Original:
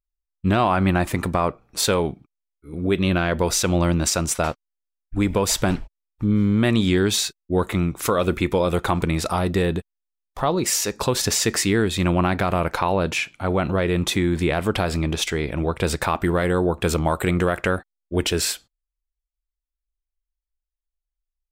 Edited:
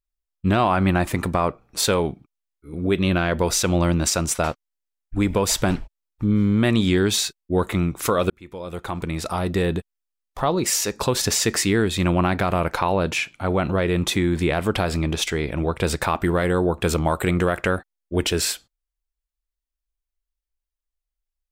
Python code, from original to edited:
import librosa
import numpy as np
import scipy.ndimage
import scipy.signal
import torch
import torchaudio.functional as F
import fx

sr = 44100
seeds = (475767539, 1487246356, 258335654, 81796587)

y = fx.edit(x, sr, fx.fade_in_span(start_s=8.3, length_s=1.44), tone=tone)